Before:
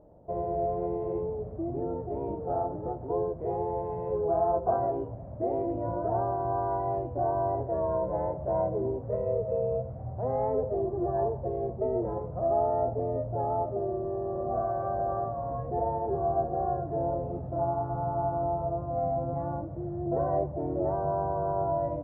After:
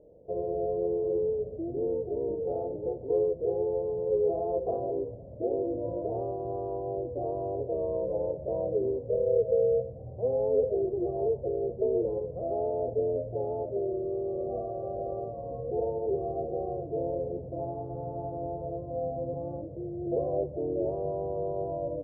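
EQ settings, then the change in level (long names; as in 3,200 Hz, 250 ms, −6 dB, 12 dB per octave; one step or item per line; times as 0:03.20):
low-pass with resonance 480 Hz, resonance Q 4.9
high-frequency loss of the air 340 metres
−6.0 dB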